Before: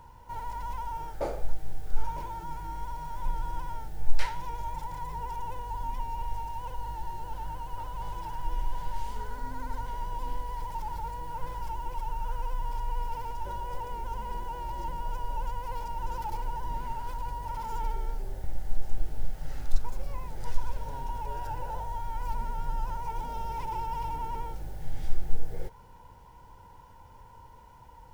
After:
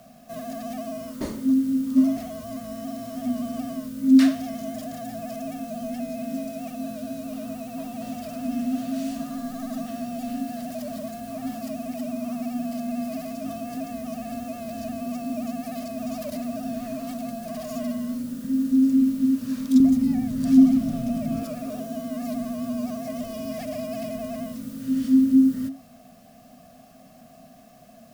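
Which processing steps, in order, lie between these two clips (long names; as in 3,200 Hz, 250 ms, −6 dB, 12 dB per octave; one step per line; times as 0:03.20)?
high-shelf EQ 2,500 Hz +12 dB
frequency shifter −270 Hz
0:19.80–0:21.43: bass and treble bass +12 dB, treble −1 dB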